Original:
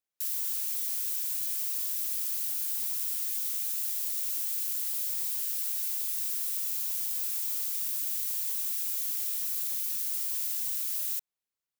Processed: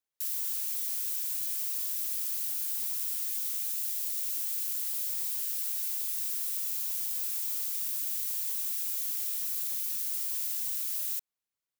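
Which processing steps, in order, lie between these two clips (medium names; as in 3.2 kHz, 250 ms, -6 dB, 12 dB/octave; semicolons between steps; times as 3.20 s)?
3.70–4.38 s: peaking EQ 890 Hz -12.5 dB -> -6 dB 0.65 oct; trim -1 dB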